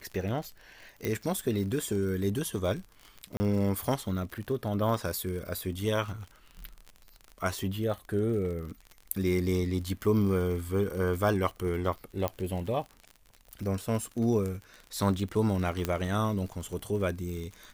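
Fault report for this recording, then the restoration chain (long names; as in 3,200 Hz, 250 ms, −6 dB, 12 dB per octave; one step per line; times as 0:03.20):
surface crackle 45 per second −36 dBFS
0:01.05: click
0:03.37–0:03.40: drop-out 30 ms
0:12.28: click −15 dBFS
0:15.85: click −14 dBFS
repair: click removal
repair the gap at 0:03.37, 30 ms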